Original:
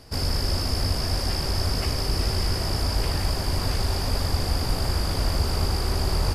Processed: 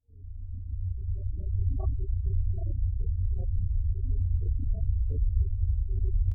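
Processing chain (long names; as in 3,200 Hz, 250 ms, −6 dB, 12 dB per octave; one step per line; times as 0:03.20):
fade in at the beginning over 1.58 s
low-pass filter 2,100 Hz 12 dB per octave
parametric band 140 Hz −8.5 dB 0.28 octaves
gate on every frequency bin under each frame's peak −10 dB strong
reversed playback
upward compression, threshold −41 dBFS
reversed playback
backwards echo 32 ms −3.5 dB
level −2.5 dB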